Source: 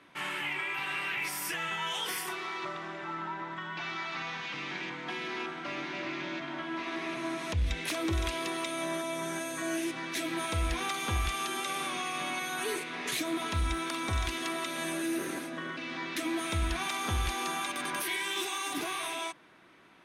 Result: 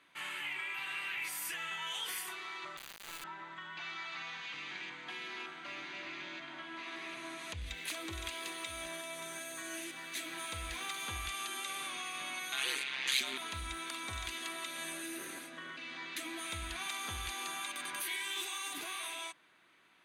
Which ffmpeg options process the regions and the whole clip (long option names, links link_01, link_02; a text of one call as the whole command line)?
ffmpeg -i in.wav -filter_complex "[0:a]asettb=1/sr,asplit=3[link_01][link_02][link_03];[link_01]atrim=end=2.774[link_04];[link_02]atrim=start=2.77:end=3.24,asetpts=PTS-STARTPTS,afade=type=in:duration=0.004:curve=qsin,afade=type=out:start_time=0.466:duration=0.004:curve=qsin,aeval=exprs='sgn(val(0))*max(abs(val(0))-0.00119,0)':channel_layout=same,acrusher=bits=3:dc=4:mix=0:aa=0.000001[link_05];[link_03]atrim=start=3.236[link_06];[link_04][link_05]acrossfade=duration=0.004:curve1=hsin:curve2=qsin[link_07];[link_07][link_06]acrossfade=duration=0.004:curve1=qsin:curve2=hsin,asettb=1/sr,asplit=3[link_08][link_09][link_10];[link_08]atrim=end=7.694[link_11];[link_09]atrim=start=7.69:end=11.06,asetpts=PTS-STARTPTS,afade=type=in:duration=0.004:curve=qsin,afade=type=out:start_time=3.366:duration=0.004:curve=qsin,aeval=exprs='sgn(val(0))*max(abs(val(0))-0.00178,0)':channel_layout=same,aecho=1:1:578:0.282,atrim=end_sample=148617[link_12];[link_10]atrim=start=11.056[link_13];[link_11][link_12]acrossfade=duration=0.004:curve1=hsin:curve2=qsin[link_14];[link_14][link_13]acrossfade=duration=0.004:curve1=qsin:curve2=hsin,asettb=1/sr,asplit=3[link_15][link_16][link_17];[link_15]atrim=end=12.524[link_18];[link_16]atrim=start=12.52:end=13.38,asetpts=PTS-STARTPTS,afade=type=in:duration=0.004:curve=qsin,afade=type=out:start_time=0.856:duration=0.004:curve=qsin,equalizer=frequency=3200:width_type=o:width=2.3:gain=12,aeval=exprs='val(0)*sin(2*PI*67*n/s)':channel_layout=same[link_19];[link_17]atrim=start=13.376[link_20];[link_18][link_19]acrossfade=duration=0.004:curve1=hsin:curve2=qsin[link_21];[link_21][link_20]acrossfade=duration=0.004:curve1=qsin:curve2=hsin,tiltshelf=frequency=1100:gain=-6,bandreject=frequency=5400:width=6,volume=-8.5dB" out.wav